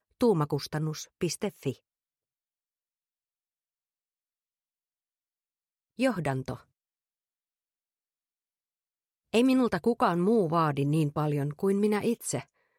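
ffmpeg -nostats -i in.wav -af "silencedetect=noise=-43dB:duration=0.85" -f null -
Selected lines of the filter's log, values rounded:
silence_start: 1.73
silence_end: 5.99 | silence_duration: 4.26
silence_start: 6.57
silence_end: 9.33 | silence_duration: 2.76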